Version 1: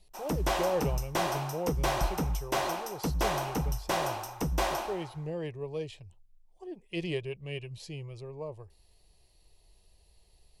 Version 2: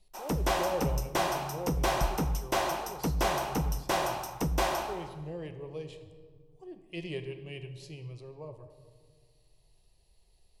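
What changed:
speech −7.5 dB
reverb: on, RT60 1.9 s

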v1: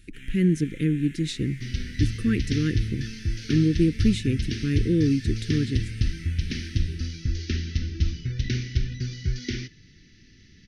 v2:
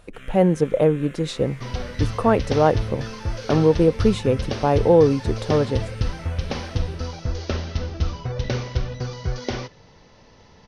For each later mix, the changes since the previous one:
master: remove elliptic band-stop filter 330–1,800 Hz, stop band 60 dB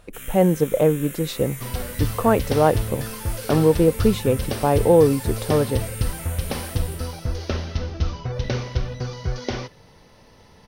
first sound: remove low-pass filter 2,800 Hz 12 dB per octave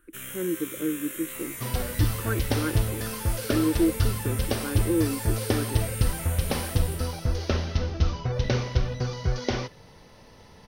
speech: add pair of resonant band-passes 700 Hz, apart 2.2 octaves

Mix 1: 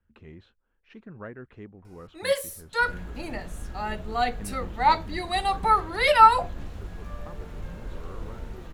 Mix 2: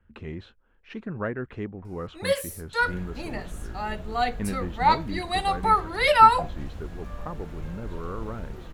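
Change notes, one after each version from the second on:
speech +10.0 dB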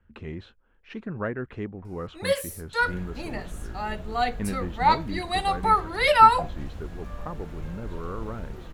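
nothing changed

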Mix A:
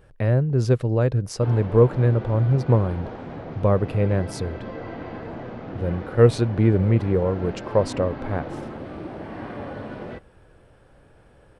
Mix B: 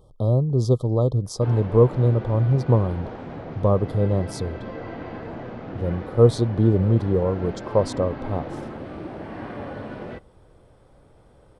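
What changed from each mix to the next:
speech: add linear-phase brick-wall band-stop 1,300–3,100 Hz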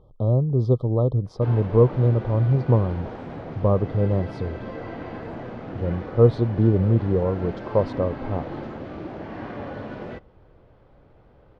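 speech: add high-frequency loss of the air 340 metres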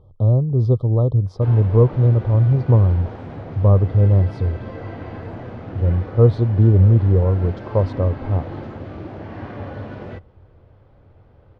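master: add parametric band 92 Hz +12 dB 0.62 octaves

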